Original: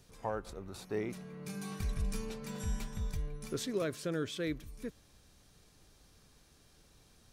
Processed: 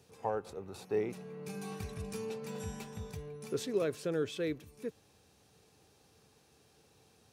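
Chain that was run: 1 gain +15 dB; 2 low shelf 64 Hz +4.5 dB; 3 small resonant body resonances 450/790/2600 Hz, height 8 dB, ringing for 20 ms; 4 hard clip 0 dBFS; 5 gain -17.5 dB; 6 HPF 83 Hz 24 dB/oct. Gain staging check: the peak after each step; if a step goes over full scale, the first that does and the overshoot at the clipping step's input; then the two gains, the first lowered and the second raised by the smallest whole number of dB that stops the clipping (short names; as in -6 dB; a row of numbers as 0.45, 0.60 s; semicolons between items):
-8.5, -7.0, -4.0, -4.0, -21.5, -21.5 dBFS; no overload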